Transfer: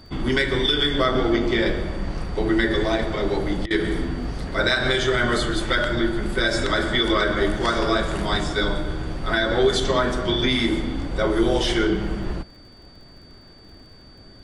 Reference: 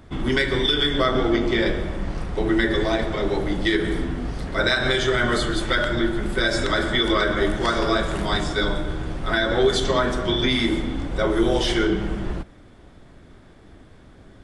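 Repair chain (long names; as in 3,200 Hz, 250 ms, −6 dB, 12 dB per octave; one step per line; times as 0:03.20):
click removal
notch filter 4,600 Hz, Q 30
repair the gap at 0:03.66, 45 ms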